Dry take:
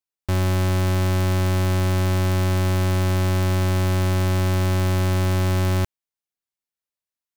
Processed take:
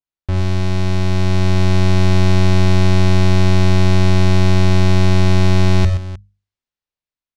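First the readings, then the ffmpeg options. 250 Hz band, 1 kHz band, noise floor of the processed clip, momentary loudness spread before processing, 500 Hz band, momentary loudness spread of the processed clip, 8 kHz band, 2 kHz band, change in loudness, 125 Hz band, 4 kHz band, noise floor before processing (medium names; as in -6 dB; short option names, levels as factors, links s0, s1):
+8.0 dB, +4.0 dB, under -85 dBFS, 1 LU, +4.5 dB, 5 LU, +1.0 dB, +5.0 dB, +6.0 dB, +6.0 dB, +7.0 dB, under -85 dBFS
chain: -filter_complex "[0:a]lowpass=4600,lowshelf=f=140:g=11,bandreject=f=50:t=h:w=6,bandreject=f=100:t=h:w=6,bandreject=f=150:t=h:w=6,bandreject=f=200:t=h:w=6,dynaudnorm=f=540:g=5:m=3.76,asplit=2[s0][s1];[s1]aecho=0:1:48|89|123|308:0.237|0.211|0.299|0.15[s2];[s0][s2]amix=inputs=2:normalize=0,adynamicequalizer=threshold=0.0112:dfrequency=3300:dqfactor=0.7:tfrequency=3300:tqfactor=0.7:attack=5:release=100:ratio=0.375:range=3.5:mode=boostabove:tftype=highshelf,volume=0.794"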